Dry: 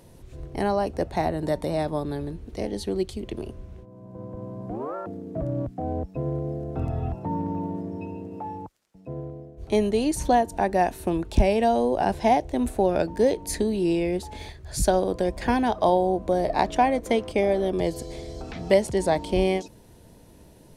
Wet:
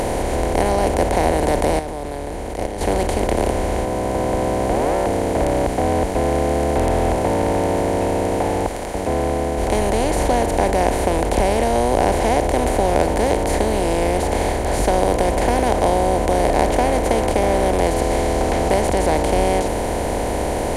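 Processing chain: per-bin compression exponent 0.2; 1.79–2.81 level quantiser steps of 11 dB; gain -5 dB

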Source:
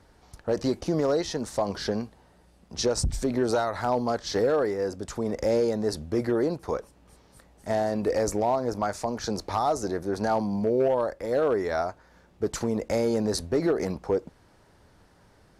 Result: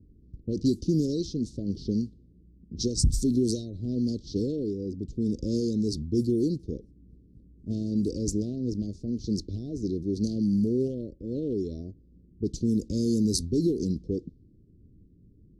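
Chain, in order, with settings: inverse Chebyshev band-stop 850–1800 Hz, stop band 70 dB; low-pass opened by the level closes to 610 Hz, open at -24.5 dBFS; gain +4.5 dB

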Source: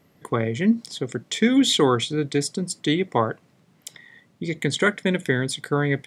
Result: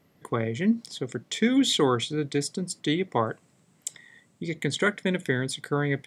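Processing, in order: 3.26–4.43 bell 7900 Hz +15 dB 0.44 oct; gain -4 dB

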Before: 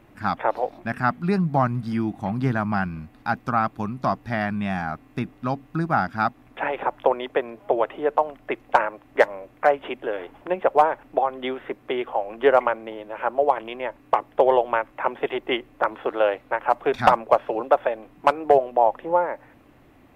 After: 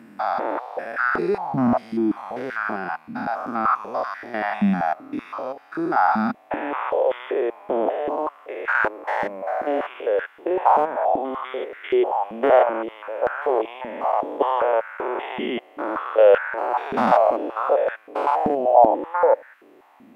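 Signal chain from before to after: stepped spectrum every 0.2 s; stepped high-pass 5.2 Hz 220–1500 Hz; gain +1 dB

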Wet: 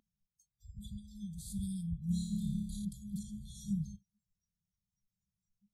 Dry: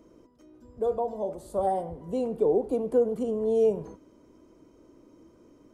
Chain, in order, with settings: 2.06–2.85 flutter echo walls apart 4.9 m, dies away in 0.8 s; FFT band-reject 210–3200 Hz; spectral noise reduction 29 dB; gain +4.5 dB

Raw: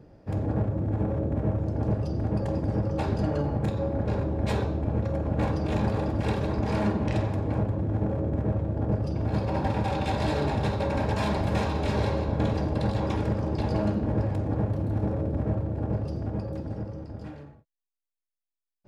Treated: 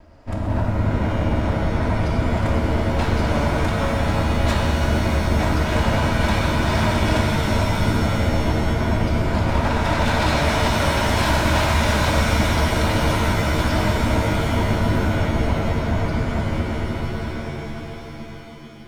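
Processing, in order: minimum comb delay 3.1 ms; bell 370 Hz -13.5 dB 0.73 oct; shimmer reverb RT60 3.7 s, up +7 st, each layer -2 dB, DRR 1 dB; gain +8 dB

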